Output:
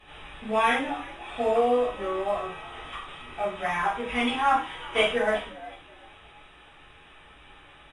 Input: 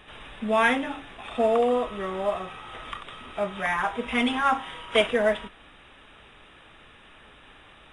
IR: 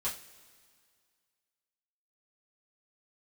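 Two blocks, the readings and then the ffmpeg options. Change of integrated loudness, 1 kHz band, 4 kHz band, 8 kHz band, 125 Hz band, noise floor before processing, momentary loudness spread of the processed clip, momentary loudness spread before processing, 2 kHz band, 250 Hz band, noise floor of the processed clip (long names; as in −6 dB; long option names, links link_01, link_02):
−1.0 dB, +1.0 dB, −0.5 dB, −0.5 dB, −2.5 dB, −52 dBFS, 16 LU, 16 LU, −1.5 dB, −3.5 dB, −52 dBFS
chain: -filter_complex "[0:a]equalizer=frequency=710:width_type=o:width=0.77:gain=-2.5,asplit=4[link_01][link_02][link_03][link_04];[link_02]adelay=367,afreqshift=67,volume=-20dB[link_05];[link_03]adelay=734,afreqshift=134,volume=-29.6dB[link_06];[link_04]adelay=1101,afreqshift=201,volume=-39.3dB[link_07];[link_01][link_05][link_06][link_07]amix=inputs=4:normalize=0[link_08];[1:a]atrim=start_sample=2205,atrim=end_sample=4410,asetrate=32634,aresample=44100[link_09];[link_08][link_09]afir=irnorm=-1:irlink=0,volume=-5.5dB"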